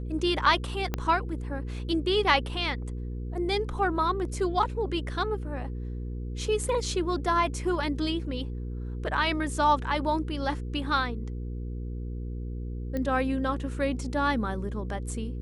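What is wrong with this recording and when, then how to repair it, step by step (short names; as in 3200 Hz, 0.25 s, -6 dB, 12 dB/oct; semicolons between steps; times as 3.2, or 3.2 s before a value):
hum 60 Hz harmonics 8 -34 dBFS
0.94 pop -14 dBFS
12.97 pop -20 dBFS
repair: de-click; de-hum 60 Hz, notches 8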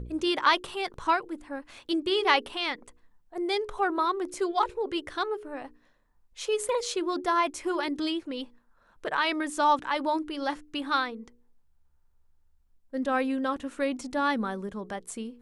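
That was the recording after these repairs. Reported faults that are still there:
0.94 pop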